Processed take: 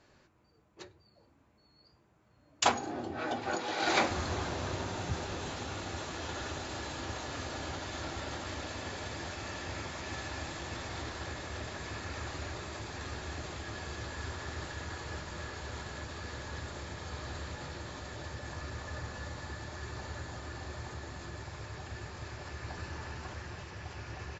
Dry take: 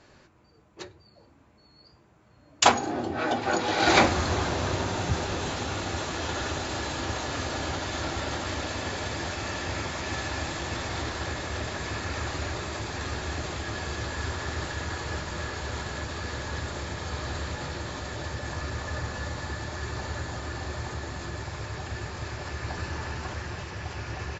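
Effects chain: 3.55–4.11 HPF 250 Hz 6 dB/oct; gain -8 dB

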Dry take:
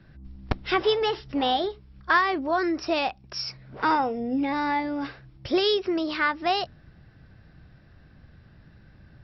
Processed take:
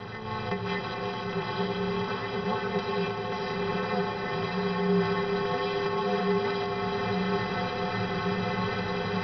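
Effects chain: per-bin compression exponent 0.2; recorder AGC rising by 16 dB/s; low shelf 120 Hz -11 dB; flange 0.45 Hz, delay 5.3 ms, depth 3 ms, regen +43%; low shelf 310 Hz +11.5 dB; metallic resonator 290 Hz, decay 0.24 s, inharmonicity 0.03; ring modulator 110 Hz; swelling echo 0.107 s, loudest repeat 8, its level -14.5 dB; mismatched tape noise reduction decoder only

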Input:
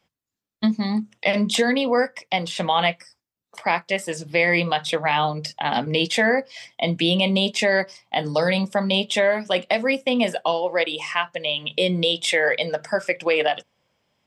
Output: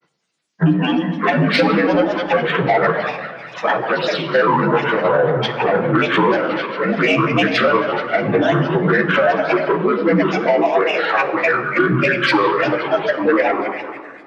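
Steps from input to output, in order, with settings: inharmonic rescaling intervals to 77%; HPF 240 Hz 12 dB/oct; high shelf 4900 Hz +10.5 dB; split-band echo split 940 Hz, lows 0.106 s, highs 0.195 s, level -11 dB; harmonic-percussive split harmonic +6 dB; compressor 3:1, threshold -20 dBFS, peak gain reduction 8.5 dB; grains 0.1 s, spray 12 ms, pitch spread up and down by 7 st; soft clip -13 dBFS, distortion -24 dB; shoebox room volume 1900 m³, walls mixed, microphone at 0.68 m; gain +8 dB

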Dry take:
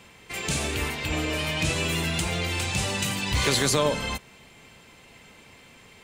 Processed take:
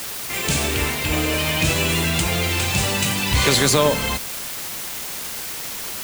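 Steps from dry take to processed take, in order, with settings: requantised 6-bit, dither triangular; gain +6 dB

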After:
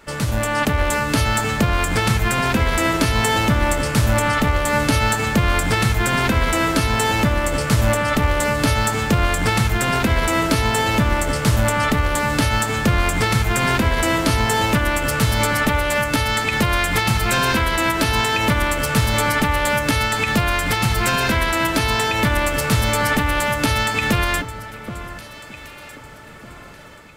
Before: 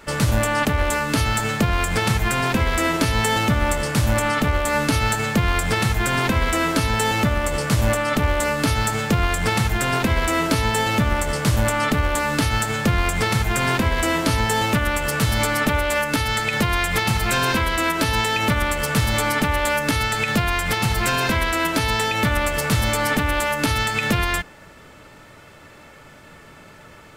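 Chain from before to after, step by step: AGC gain up to 6 dB; on a send: echo with dull and thin repeats by turns 0.776 s, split 1600 Hz, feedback 51%, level -11.5 dB; on the sum: gain -3 dB

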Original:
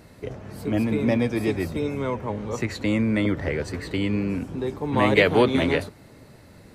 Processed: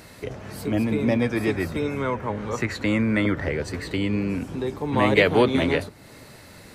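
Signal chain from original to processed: 1.22–3.45 bell 1500 Hz +7 dB 1 oct; mismatched tape noise reduction encoder only

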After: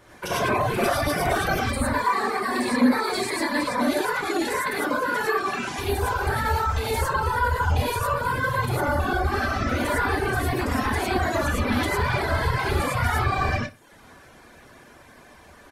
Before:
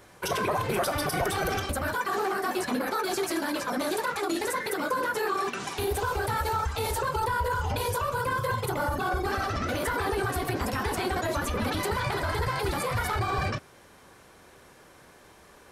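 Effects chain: high shelf 5000 Hz -6 dB; notch 420 Hz, Q 12; non-linear reverb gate 0.13 s rising, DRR -6 dB; reverb removal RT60 0.56 s; 1.64–3.82 ripple EQ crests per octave 0.96, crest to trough 9 dB; feedback echo 60 ms, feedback 39%, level -19 dB

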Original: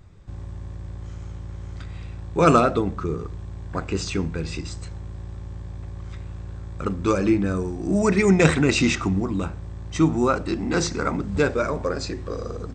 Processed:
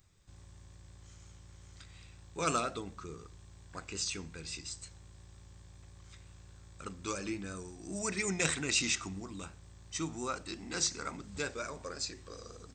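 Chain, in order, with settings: vibrato 5.6 Hz 28 cents; pre-emphasis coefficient 0.9

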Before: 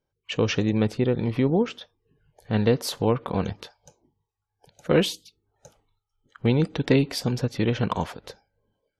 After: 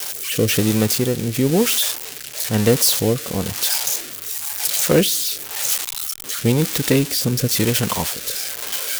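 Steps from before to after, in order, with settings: switching spikes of -13.5 dBFS; rotary speaker horn 1 Hz; gain +5.5 dB

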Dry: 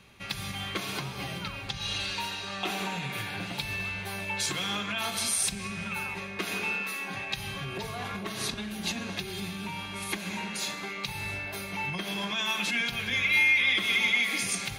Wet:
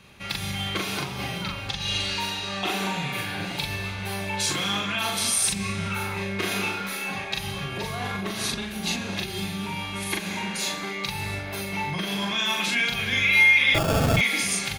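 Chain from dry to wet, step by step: 5.5–7.12 flutter echo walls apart 5.2 m, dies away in 0.32 s; 13.74–14.17 sample-rate reducer 2000 Hz, jitter 0%; doubler 41 ms -2.5 dB; gain +3 dB

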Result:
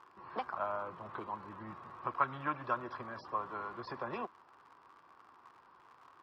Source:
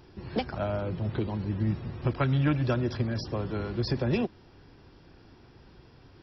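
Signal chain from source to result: crackle 110/s -37 dBFS; band-pass 1100 Hz, Q 6.1; gain +9.5 dB

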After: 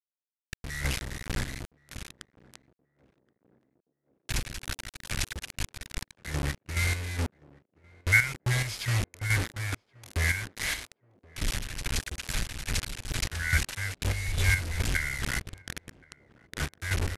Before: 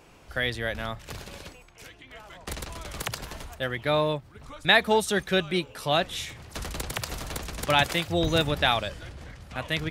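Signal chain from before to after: Chebyshev band-stop 260–2600 Hz, order 5; low shelf 170 Hz +4.5 dB; in parallel at -7.5 dB: soft clip -23 dBFS, distortion -13 dB; on the sum: bit-crush 5-bit; chopper 4.1 Hz, depth 60%, duty 40%; speed mistake 78 rpm record played at 45 rpm; on a send: narrowing echo 1.075 s, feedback 59%, band-pass 380 Hz, level -19.5 dB

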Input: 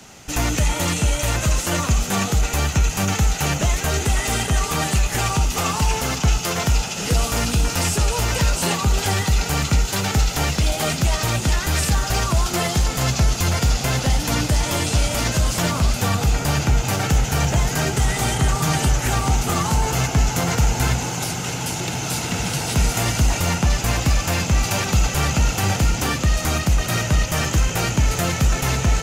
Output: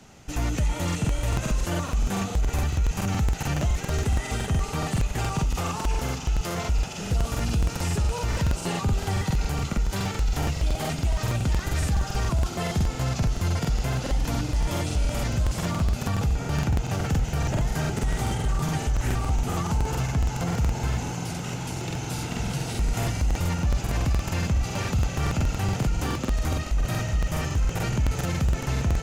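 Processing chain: tilt -1.5 dB/oct; limiter -9.5 dBFS, peak gain reduction 6.5 dB; crackling interface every 0.14 s, samples 2048, repeat, from 0.86; gain -7.5 dB

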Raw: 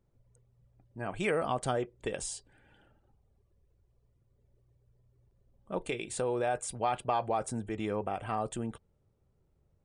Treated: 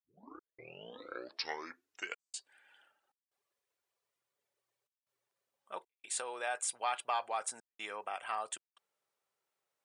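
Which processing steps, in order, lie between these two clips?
tape start at the beginning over 2.48 s; HPF 1200 Hz 12 dB/oct; step gate "xx.xxxxxxxx.xx" 77 bpm -60 dB; gain +3 dB

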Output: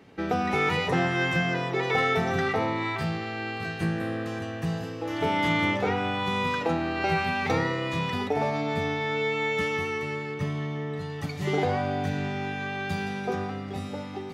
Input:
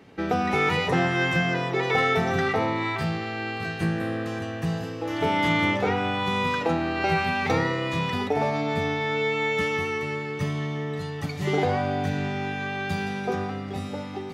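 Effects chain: 10.34–11.1 high shelf 3900 Hz -6.5 dB; gain -2 dB

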